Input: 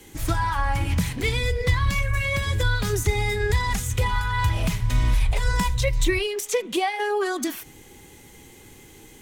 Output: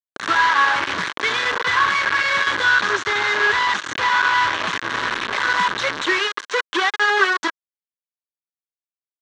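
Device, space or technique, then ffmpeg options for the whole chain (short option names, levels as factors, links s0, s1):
hand-held game console: -filter_complex "[0:a]acrusher=bits=3:mix=0:aa=0.000001,highpass=470,equalizer=f=510:t=q:w=4:g=-5,equalizer=f=720:t=q:w=4:g=-8,equalizer=f=1100:t=q:w=4:g=6,equalizer=f=1600:t=q:w=4:g=9,equalizer=f=2500:t=q:w=4:g=-4,equalizer=f=4900:t=q:w=4:g=-7,lowpass=f=5000:w=0.5412,lowpass=f=5000:w=1.3066,asettb=1/sr,asplit=3[s0][s1][s2];[s0]atrim=end=2.724[s3];[s1]atrim=start=2.72:end=4.66,asetpts=PTS-STARTPTS,afade=t=in:d=0.004:c=qsin,afade=t=out:st=1.936:d=0.004:c=qsin,lowpass=f=8900:w=0.5412,lowpass=f=8900:w=1.3066[s4];[s2]atrim=start=4.656[s5];[s3][s4]acrossfade=d=0.004:c1=hsin:c2=qsin[s6];[s6][s5]acrossfade=d=0.004:c1=qsin:c2=hsin,volume=1.88"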